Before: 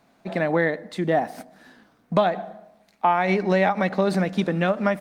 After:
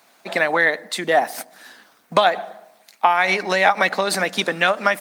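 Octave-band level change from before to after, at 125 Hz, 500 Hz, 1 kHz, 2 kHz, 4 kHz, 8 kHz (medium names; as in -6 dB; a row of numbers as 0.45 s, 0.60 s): -9.0 dB, +1.0 dB, +5.0 dB, +9.5 dB, +12.5 dB, no reading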